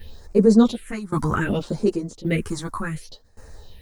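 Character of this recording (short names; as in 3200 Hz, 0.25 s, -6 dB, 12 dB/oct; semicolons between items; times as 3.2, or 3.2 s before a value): a quantiser's noise floor 10-bit, dither none; phasing stages 4, 0.66 Hz, lowest notch 440–3200 Hz; tremolo saw down 0.89 Hz, depth 90%; a shimmering, thickened sound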